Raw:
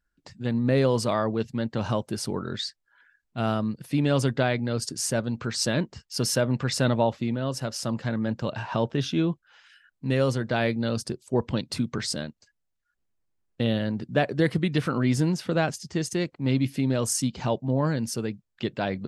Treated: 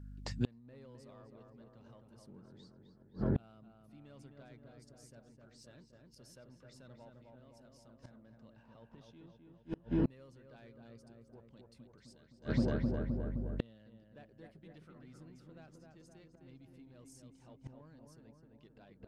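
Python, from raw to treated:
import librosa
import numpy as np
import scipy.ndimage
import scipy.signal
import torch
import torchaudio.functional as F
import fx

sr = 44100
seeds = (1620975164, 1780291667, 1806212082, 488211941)

p1 = fx.peak_eq(x, sr, hz=190.0, db=13.5, octaves=1.7, at=(2.26, 3.38))
p2 = fx.add_hum(p1, sr, base_hz=50, snr_db=25)
p3 = np.clip(p2, -10.0 ** (-20.5 / 20.0), 10.0 ** (-20.5 / 20.0))
p4 = p2 + (p3 * librosa.db_to_amplitude(-4.0))
p5 = fx.echo_filtered(p4, sr, ms=260, feedback_pct=68, hz=1800.0, wet_db=-3.0)
p6 = fx.gate_flip(p5, sr, shuts_db=-18.0, range_db=-36)
y = p6 * librosa.db_to_amplitude(-1.5)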